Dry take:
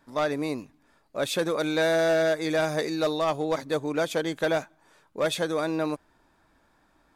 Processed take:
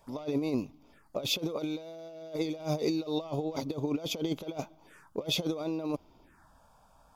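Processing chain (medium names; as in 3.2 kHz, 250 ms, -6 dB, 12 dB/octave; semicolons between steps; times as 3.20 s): peaking EQ 4 kHz -8.5 dB 0.23 oct; compressor with a negative ratio -31 dBFS, ratio -0.5; touch-sensitive phaser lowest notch 220 Hz, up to 1.7 kHz, full sweep at -41 dBFS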